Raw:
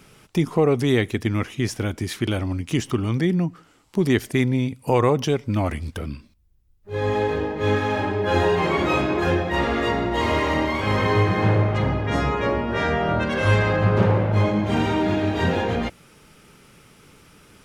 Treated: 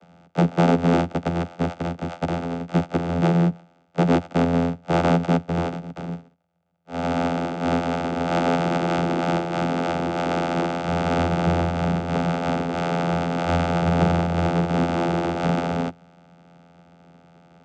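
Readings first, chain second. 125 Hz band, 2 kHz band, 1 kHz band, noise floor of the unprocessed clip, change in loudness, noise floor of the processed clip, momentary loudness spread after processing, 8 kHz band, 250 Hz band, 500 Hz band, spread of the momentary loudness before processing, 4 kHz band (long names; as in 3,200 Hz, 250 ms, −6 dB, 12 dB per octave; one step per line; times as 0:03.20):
−1.5 dB, −4.5 dB, +1.0 dB, −56 dBFS, −1.0 dB, −58 dBFS, 8 LU, −4.0 dB, +1.0 dB, −2.0 dB, 8 LU, −4.0 dB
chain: samples sorted by size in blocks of 64 samples
channel vocoder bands 16, saw 85.4 Hz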